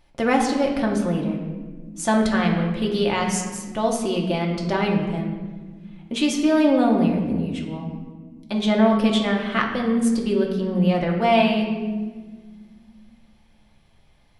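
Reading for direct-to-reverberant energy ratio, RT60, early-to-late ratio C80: -1.0 dB, 1.6 s, 7.0 dB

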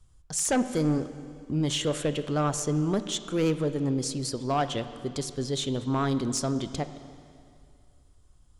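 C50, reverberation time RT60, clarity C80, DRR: 12.0 dB, 2.4 s, 12.5 dB, 11.0 dB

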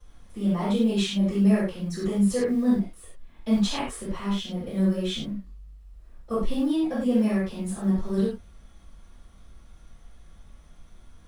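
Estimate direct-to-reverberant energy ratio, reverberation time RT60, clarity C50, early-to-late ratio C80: -16.0 dB, no single decay rate, 0.5 dB, 6.0 dB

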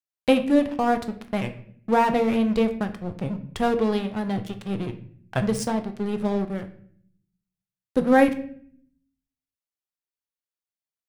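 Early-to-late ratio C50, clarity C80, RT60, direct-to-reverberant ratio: 12.5 dB, 15.5 dB, 0.60 s, 7.0 dB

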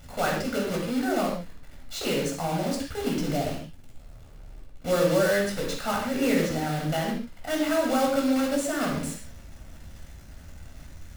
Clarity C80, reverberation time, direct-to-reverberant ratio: 6.5 dB, no single decay rate, -1.5 dB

